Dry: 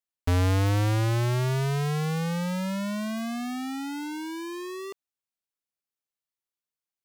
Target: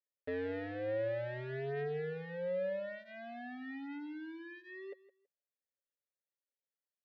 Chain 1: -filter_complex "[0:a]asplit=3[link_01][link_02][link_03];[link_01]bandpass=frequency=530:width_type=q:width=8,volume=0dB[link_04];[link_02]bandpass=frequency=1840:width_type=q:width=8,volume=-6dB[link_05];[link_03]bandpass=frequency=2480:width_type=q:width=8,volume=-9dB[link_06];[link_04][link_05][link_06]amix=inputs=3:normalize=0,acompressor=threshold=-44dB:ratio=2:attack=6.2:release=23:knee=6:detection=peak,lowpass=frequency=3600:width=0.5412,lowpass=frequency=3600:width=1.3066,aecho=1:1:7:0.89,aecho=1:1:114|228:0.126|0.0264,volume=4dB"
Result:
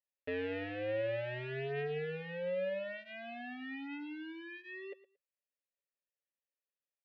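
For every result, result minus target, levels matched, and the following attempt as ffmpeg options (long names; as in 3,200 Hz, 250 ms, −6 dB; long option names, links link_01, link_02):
echo 49 ms early; 2,000 Hz band +2.5 dB
-filter_complex "[0:a]asplit=3[link_01][link_02][link_03];[link_01]bandpass=frequency=530:width_type=q:width=8,volume=0dB[link_04];[link_02]bandpass=frequency=1840:width_type=q:width=8,volume=-6dB[link_05];[link_03]bandpass=frequency=2480:width_type=q:width=8,volume=-9dB[link_06];[link_04][link_05][link_06]amix=inputs=3:normalize=0,acompressor=threshold=-44dB:ratio=2:attack=6.2:release=23:knee=6:detection=peak,lowpass=frequency=3600:width=0.5412,lowpass=frequency=3600:width=1.3066,aecho=1:1:7:0.89,aecho=1:1:163|326:0.126|0.0264,volume=4dB"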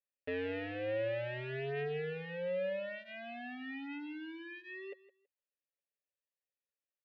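2,000 Hz band +2.5 dB
-filter_complex "[0:a]asplit=3[link_01][link_02][link_03];[link_01]bandpass=frequency=530:width_type=q:width=8,volume=0dB[link_04];[link_02]bandpass=frequency=1840:width_type=q:width=8,volume=-6dB[link_05];[link_03]bandpass=frequency=2480:width_type=q:width=8,volume=-9dB[link_06];[link_04][link_05][link_06]amix=inputs=3:normalize=0,acompressor=threshold=-44dB:ratio=2:attack=6.2:release=23:knee=6:detection=peak,lowpass=frequency=3600:width=0.5412,lowpass=frequency=3600:width=1.3066,equalizer=frequency=2700:width_type=o:width=0.54:gain=-12.5,aecho=1:1:7:0.89,aecho=1:1:163|326:0.126|0.0264,volume=4dB"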